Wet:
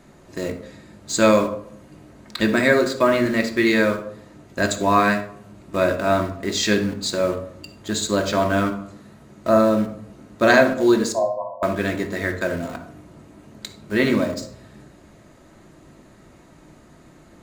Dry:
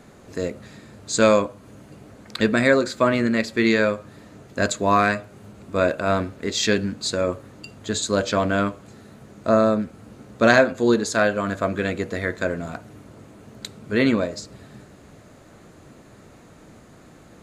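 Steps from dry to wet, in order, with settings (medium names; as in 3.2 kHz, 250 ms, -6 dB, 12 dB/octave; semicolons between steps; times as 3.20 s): in parallel at -9 dB: bit crusher 5-bit; 11.12–11.63 s: on the sum: brick-wall FIR band-pass 520–1100 Hz; reverberation RT60 0.65 s, pre-delay 3 ms, DRR 3.5 dB; trim -3 dB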